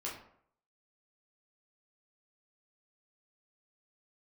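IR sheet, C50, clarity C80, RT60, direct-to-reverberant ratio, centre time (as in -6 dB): 5.5 dB, 9.5 dB, 0.65 s, -5.5 dB, 35 ms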